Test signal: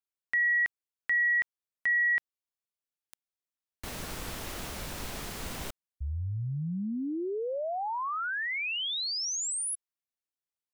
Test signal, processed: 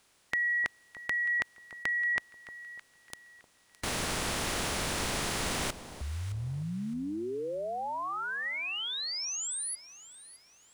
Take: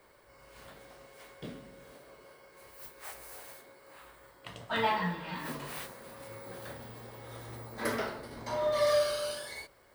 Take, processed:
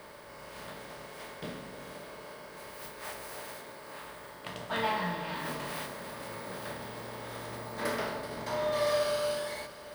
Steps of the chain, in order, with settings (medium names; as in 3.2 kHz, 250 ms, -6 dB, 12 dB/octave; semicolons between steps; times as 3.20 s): spectral levelling over time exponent 0.6; echo whose repeats swap between lows and highs 307 ms, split 1 kHz, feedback 55%, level -11.5 dB; trim -3.5 dB